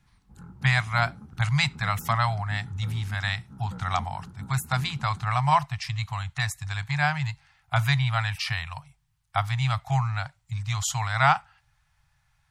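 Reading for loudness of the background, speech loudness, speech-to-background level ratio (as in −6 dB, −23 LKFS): −44.5 LKFS, −27.0 LKFS, 17.5 dB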